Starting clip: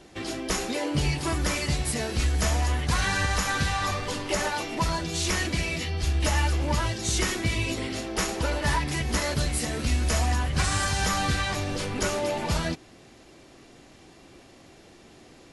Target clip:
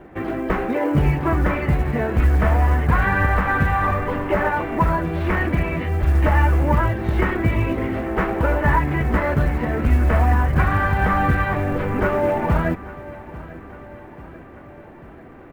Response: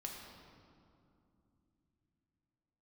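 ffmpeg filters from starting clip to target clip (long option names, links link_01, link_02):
-filter_complex "[0:a]lowpass=frequency=1900:width=0.5412,lowpass=frequency=1900:width=1.3066,acrusher=bits=9:mode=log:mix=0:aa=0.000001,asplit=2[link_01][link_02];[link_02]aecho=0:1:842|1684|2526|3368|4210:0.126|0.073|0.0424|0.0246|0.0142[link_03];[link_01][link_03]amix=inputs=2:normalize=0,volume=8.5dB"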